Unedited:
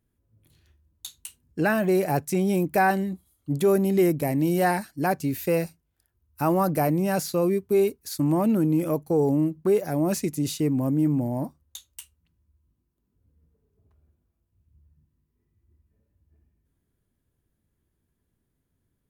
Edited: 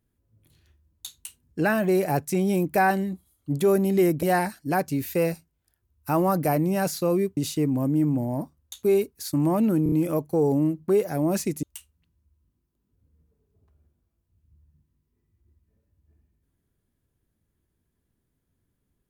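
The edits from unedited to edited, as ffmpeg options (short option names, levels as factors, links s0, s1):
-filter_complex "[0:a]asplit=8[s0][s1][s2][s3][s4][s5][s6][s7];[s0]atrim=end=4.232[s8];[s1]atrim=start=4.548:end=7.692[s9];[s2]atrim=start=10.398:end=11.862[s10];[s3]atrim=start=7.688:end=8.722[s11];[s4]atrim=start=8.688:end=8.722[s12];[s5]atrim=start=8.688:end=8.722[s13];[s6]atrim=start=8.688:end=10.402[s14];[s7]atrim=start=11.858[s15];[s8][s9]acrossfade=d=0.004:c1=hsin:c2=hsin[s16];[s16][s10]acrossfade=d=0.004:c1=hsin:c2=hsin[s17];[s17][s11]acrossfade=d=0.004:c1=hsin:c2=hsin[s18];[s18][s12]acrossfade=d=0.004:c1=hsin:c2=hsin[s19];[s19][s13]acrossfade=d=0.004:c1=hsin:c2=hsin[s20];[s20][s14]acrossfade=d=0.004:c1=hsin:c2=hsin[s21];[s21][s15]acrossfade=d=0.004:c1=hsin:c2=hsin"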